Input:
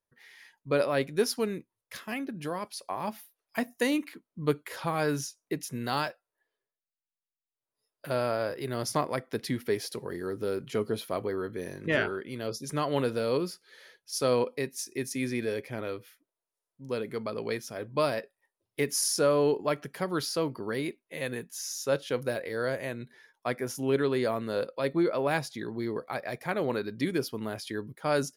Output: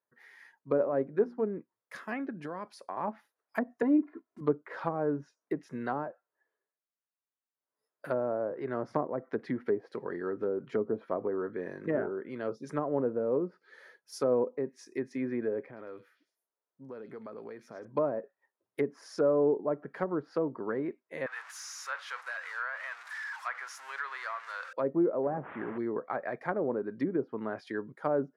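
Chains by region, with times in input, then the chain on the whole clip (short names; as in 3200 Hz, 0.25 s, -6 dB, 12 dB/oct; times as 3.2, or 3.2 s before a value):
0.78–1.45 high shelf 2900 Hz +7.5 dB + notches 60/120/180/240/300/360 Hz
2.45–2.97 HPF 59 Hz + low shelf 180 Hz +8.5 dB + compressor 3:1, threshold -36 dBFS
3.82–4.41 block floating point 5-bit + comb 2.9 ms, depth 97%
15.66–17.85 bell 12000 Hz -13.5 dB 2.8 oct + compressor, threshold -40 dBFS + delay with a stepping band-pass 0.104 s, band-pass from 3800 Hz, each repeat 0.7 oct, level -1 dB
21.26–24.73 zero-crossing step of -32.5 dBFS + HPF 1100 Hz 24 dB/oct
25.23–25.78 delta modulation 16 kbps, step -32.5 dBFS + LPF 2400 Hz 6 dB/oct
whole clip: HPF 200 Hz 12 dB/oct; resonant high shelf 2200 Hz -9 dB, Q 1.5; treble ducked by the level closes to 650 Hz, closed at -26.5 dBFS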